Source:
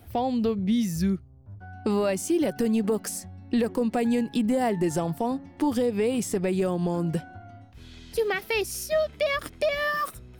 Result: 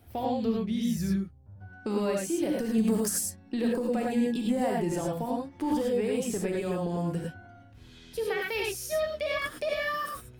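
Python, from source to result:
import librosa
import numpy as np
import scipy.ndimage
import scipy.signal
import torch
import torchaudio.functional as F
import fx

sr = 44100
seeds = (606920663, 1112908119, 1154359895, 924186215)

y = fx.bass_treble(x, sr, bass_db=7, treble_db=9, at=(2.78, 3.19))
y = fx.rev_gated(y, sr, seeds[0], gate_ms=130, shape='rising', drr_db=-1.5)
y = F.gain(torch.from_numpy(y), -7.0).numpy()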